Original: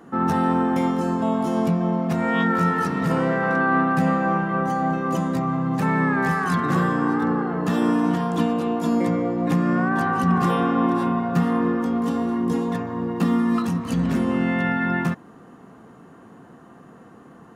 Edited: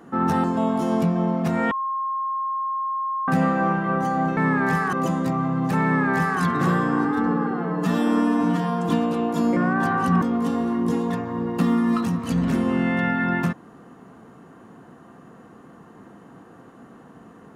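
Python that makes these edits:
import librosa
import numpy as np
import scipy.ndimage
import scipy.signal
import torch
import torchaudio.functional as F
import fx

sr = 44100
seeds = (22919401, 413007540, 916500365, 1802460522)

y = fx.edit(x, sr, fx.cut(start_s=0.44, length_s=0.65),
    fx.bleep(start_s=2.36, length_s=1.57, hz=1070.0, db=-23.0),
    fx.duplicate(start_s=5.93, length_s=0.56, to_s=5.02),
    fx.stretch_span(start_s=7.14, length_s=1.23, factor=1.5),
    fx.cut(start_s=9.04, length_s=0.68),
    fx.cut(start_s=10.37, length_s=1.46), tone=tone)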